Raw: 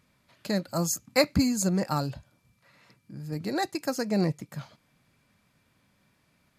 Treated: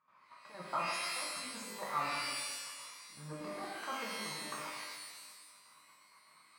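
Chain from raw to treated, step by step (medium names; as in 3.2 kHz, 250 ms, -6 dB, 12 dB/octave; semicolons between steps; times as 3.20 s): compressor with a negative ratio -32 dBFS, ratio -1; band-pass filter 1.1 kHz, Q 6.7; trance gate ".xx.x..x" 194 bpm -12 dB; pitch-shifted reverb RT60 1.4 s, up +12 st, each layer -2 dB, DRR -3.5 dB; trim +8.5 dB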